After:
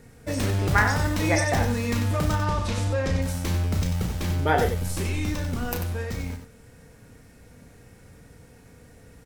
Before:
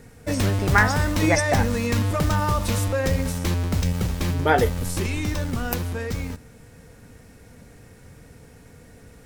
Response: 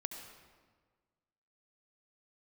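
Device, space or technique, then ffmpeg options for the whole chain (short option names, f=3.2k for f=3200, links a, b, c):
slapback doubling: -filter_complex "[0:a]asettb=1/sr,asplit=3[a][b][c];[a]atrim=end=2.354[d];[b]atrim=start=2.35:end=3.22,asetpts=PTS-STARTPTS,afade=t=in:d=0.004:c=qsin,afade=t=out:st=0.866:d=0.004:c=qsin,lowpass=6.7k[e];[c]atrim=start=3.216[f];[d][e]acrossfade=d=0.004:c1=hsin:c2=qsin[g];[g][f]acrossfade=d=0.004:c1=qsin:c2=hsin,asplit=3[h][i][j];[i]adelay=33,volume=-7.5dB[k];[j]adelay=93,volume=-7.5dB[l];[h][k][l]amix=inputs=3:normalize=0,volume=-4dB"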